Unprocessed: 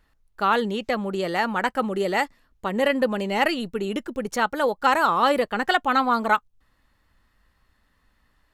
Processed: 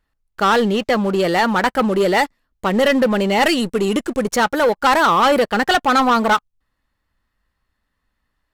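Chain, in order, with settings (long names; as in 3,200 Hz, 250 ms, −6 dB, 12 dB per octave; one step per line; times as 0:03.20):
leveller curve on the samples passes 3
0:03.43–0:04.26: parametric band 8,400 Hz +8 dB 0.81 octaves
level −1.5 dB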